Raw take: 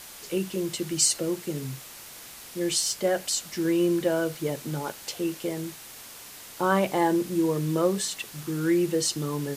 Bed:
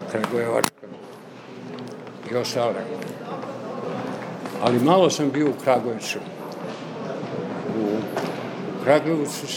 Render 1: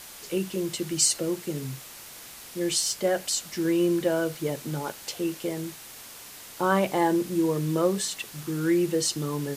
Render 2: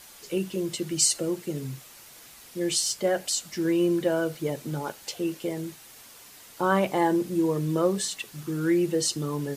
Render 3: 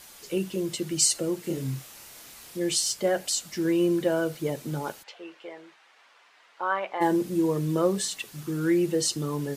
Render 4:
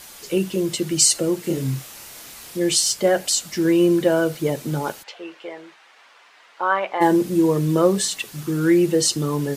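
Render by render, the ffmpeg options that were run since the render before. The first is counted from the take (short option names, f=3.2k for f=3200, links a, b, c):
-af anull
-af "afftdn=nr=6:nf=-45"
-filter_complex "[0:a]asettb=1/sr,asplit=3[a][b][c];[a]atrim=end=1.414[d];[b]atrim=start=1.41:end=2.57,asetpts=PTS-STARTPTS,afade=t=in:d=0.004:c=qsin,afade=t=out:st=1.156:d=0.004:c=qsin,asplit=2[e][f];[f]adelay=30,volume=-2.5dB[g];[e][g]amix=inputs=2:normalize=0,atrim=end_sample=51156[h];[c]atrim=start=2.566[i];[d][h]acrossfade=d=0.004:c1=hsin:c2=qsin[j];[j][i]acrossfade=d=0.004:c1=qsin:c2=hsin,asplit=3[k][l][m];[k]afade=t=out:st=5.02:d=0.02[n];[l]highpass=790,lowpass=2.3k,afade=t=in:st=5.02:d=0.02,afade=t=out:st=7:d=0.02[o];[m]afade=t=in:st=7:d=0.02[p];[n][o][p]amix=inputs=3:normalize=0"
-af "volume=7dB,alimiter=limit=-3dB:level=0:latency=1"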